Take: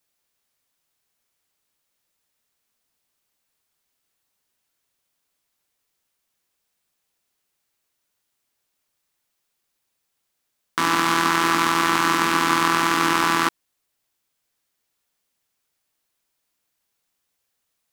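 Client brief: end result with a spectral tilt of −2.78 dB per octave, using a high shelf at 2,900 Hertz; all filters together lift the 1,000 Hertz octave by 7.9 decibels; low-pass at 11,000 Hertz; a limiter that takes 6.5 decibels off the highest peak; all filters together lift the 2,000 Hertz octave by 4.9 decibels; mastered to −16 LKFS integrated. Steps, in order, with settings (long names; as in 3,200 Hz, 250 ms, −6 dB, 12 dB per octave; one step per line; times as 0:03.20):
low-pass filter 11,000 Hz
parametric band 1,000 Hz +8.5 dB
parametric band 2,000 Hz +4 dB
high-shelf EQ 2,900 Hz −3 dB
level +1 dB
brickwall limiter −5 dBFS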